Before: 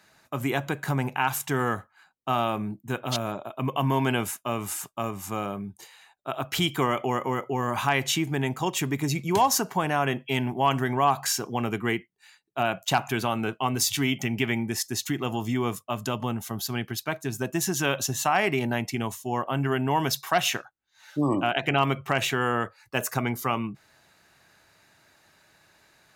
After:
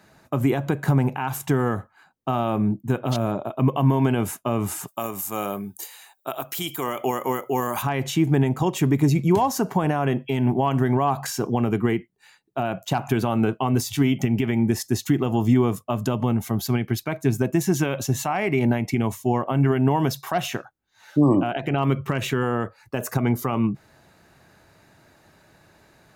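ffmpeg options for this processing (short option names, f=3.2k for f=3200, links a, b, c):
-filter_complex "[0:a]asplit=3[a][b][c];[a]afade=t=out:st=4.87:d=0.02[d];[b]aemphasis=mode=production:type=riaa,afade=t=in:st=4.87:d=0.02,afade=t=out:st=7.81:d=0.02[e];[c]afade=t=in:st=7.81:d=0.02[f];[d][e][f]amix=inputs=3:normalize=0,asettb=1/sr,asplit=3[g][h][i];[g]atrim=end=16.174[j];[h]atrim=start=16.17:end=19.79,asetpts=PTS-STARTPTS,afade=t=in:d=0.004:c=qsin,afade=t=out:st=3.616:d=0.004:c=qsin,equalizer=f=2.2k:t=o:w=0.24:g=8[k];[i]atrim=start=19.786[l];[j][k]acrossfade=d=0.004:c1=hsin:c2=qsin[m];[m][l]acrossfade=d=0.004:c1=qsin:c2=hsin,asettb=1/sr,asplit=3[n][o][p];[n]atrim=end=21.874[q];[o]atrim=start=21.87:end=22.43,asetpts=PTS-STARTPTS,afade=t=in:d=0.004:c=qsin,afade=t=out:st=0.556:d=0.004:c=qsin,equalizer=f=740:w=5.1:g=-14.5[r];[p]atrim=start=22.426[s];[q][r]acrossfade=d=0.004:c1=hsin:c2=qsin[t];[t][s]acrossfade=d=0.004:c1=qsin:c2=hsin,highshelf=f=9.7k:g=4,alimiter=limit=-18.5dB:level=0:latency=1:release=143,tiltshelf=f=970:g=6.5,volume=5dB"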